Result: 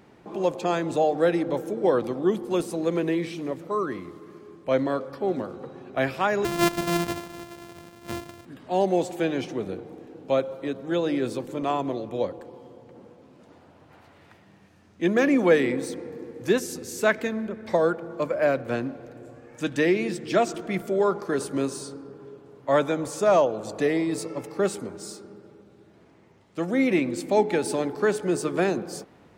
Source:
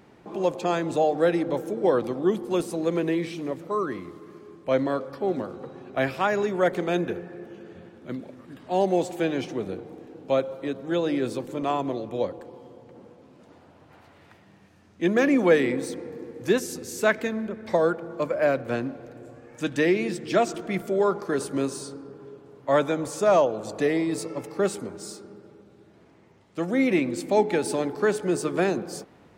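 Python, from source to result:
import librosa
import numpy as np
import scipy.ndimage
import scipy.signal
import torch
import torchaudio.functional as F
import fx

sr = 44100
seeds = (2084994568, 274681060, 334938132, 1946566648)

y = fx.sample_sort(x, sr, block=128, at=(6.44, 8.44), fade=0.02)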